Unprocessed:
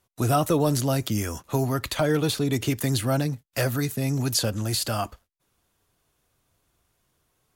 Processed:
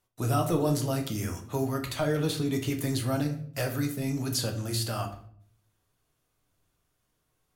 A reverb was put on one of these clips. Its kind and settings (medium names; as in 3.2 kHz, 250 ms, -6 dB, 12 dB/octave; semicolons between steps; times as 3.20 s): simulated room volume 79 m³, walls mixed, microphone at 0.49 m; trim -7 dB